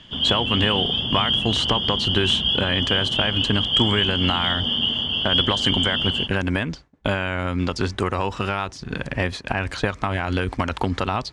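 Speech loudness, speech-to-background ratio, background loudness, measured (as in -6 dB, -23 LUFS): -25.0 LUFS, -4.5 dB, -20.5 LUFS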